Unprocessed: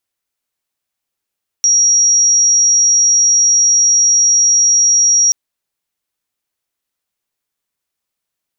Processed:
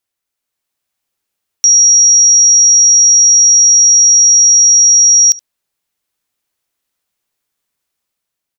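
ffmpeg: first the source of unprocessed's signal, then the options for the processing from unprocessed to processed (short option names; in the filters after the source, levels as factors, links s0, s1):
-f lavfi -i "sine=f=5680:d=3.68:r=44100,volume=10.56dB"
-af "dynaudnorm=f=150:g=9:m=1.78,aecho=1:1:71:0.075"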